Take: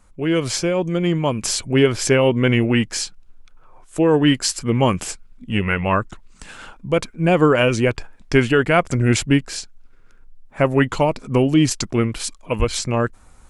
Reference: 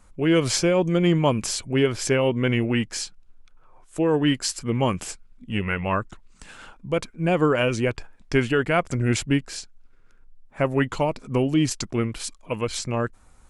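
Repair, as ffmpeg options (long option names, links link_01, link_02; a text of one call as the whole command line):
ffmpeg -i in.wav -filter_complex "[0:a]asplit=3[link_01][link_02][link_03];[link_01]afade=type=out:start_time=12.58:duration=0.02[link_04];[link_02]highpass=frequency=140:width=0.5412,highpass=frequency=140:width=1.3066,afade=type=in:start_time=12.58:duration=0.02,afade=type=out:start_time=12.7:duration=0.02[link_05];[link_03]afade=type=in:start_time=12.7:duration=0.02[link_06];[link_04][link_05][link_06]amix=inputs=3:normalize=0,asetnsamples=nb_out_samples=441:pad=0,asendcmd='1.44 volume volume -5.5dB',volume=0dB" out.wav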